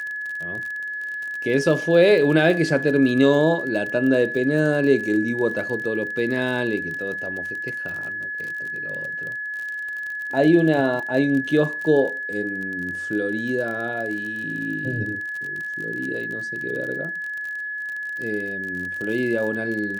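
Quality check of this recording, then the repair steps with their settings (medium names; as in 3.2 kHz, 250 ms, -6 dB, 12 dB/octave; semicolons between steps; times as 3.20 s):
crackle 42 per s -29 dBFS
whine 1.7 kHz -27 dBFS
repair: de-click; band-stop 1.7 kHz, Q 30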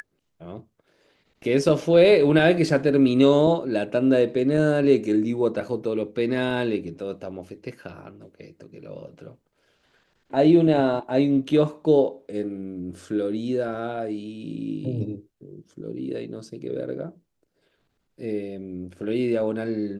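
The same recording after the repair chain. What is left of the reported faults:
nothing left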